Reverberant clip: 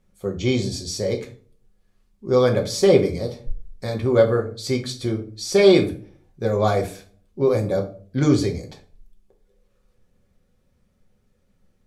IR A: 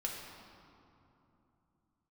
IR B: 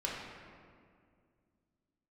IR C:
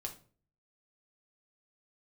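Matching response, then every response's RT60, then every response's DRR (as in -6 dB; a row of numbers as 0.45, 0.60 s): C; 2.9, 2.2, 0.45 s; -2.0, -4.5, 1.5 dB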